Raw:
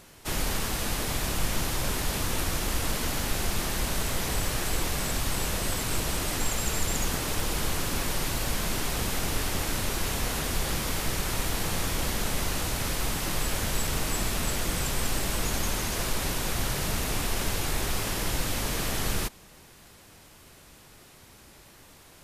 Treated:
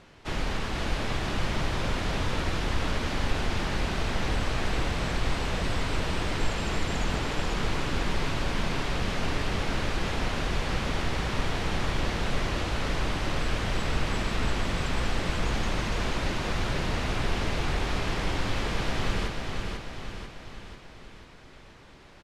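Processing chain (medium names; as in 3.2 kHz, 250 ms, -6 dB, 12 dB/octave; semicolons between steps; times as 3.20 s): low-pass 3.6 kHz 12 dB/octave; on a send: feedback delay 493 ms, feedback 54%, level -4.5 dB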